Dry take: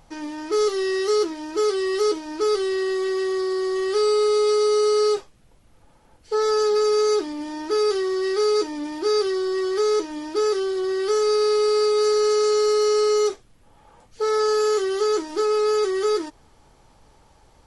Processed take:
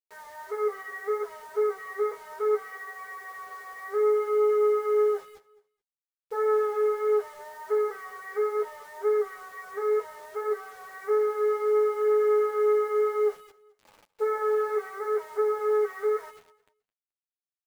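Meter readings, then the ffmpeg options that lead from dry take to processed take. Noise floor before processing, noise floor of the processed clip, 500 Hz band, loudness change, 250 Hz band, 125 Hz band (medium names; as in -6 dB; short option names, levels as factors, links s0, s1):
-55 dBFS, under -85 dBFS, -5.5 dB, -5.5 dB, under -15 dB, no reading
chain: -filter_complex "[0:a]afftfilt=real='re*between(b*sr/4096,390,2300)':imag='im*between(b*sr/4096,390,2300)':win_size=4096:overlap=0.75,asplit=2[s0][s1];[s1]adelay=200,highpass=300,lowpass=3400,asoftclip=type=hard:threshold=0.0708,volume=0.141[s2];[s0][s2]amix=inputs=2:normalize=0,acrusher=bits=7:mix=0:aa=0.000001,asplit=2[s3][s4];[s4]aecho=0:1:215|430:0.0891|0.0232[s5];[s3][s5]amix=inputs=2:normalize=0,flanger=delay=8.8:depth=5:regen=-10:speed=0.65:shape=triangular,volume=0.841"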